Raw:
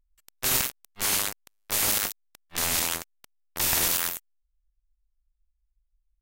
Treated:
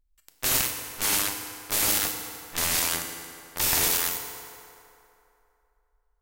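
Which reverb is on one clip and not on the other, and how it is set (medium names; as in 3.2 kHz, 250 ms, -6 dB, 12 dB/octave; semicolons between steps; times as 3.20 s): FDN reverb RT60 2.9 s, low-frequency decay 0.7×, high-frequency decay 0.6×, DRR 4 dB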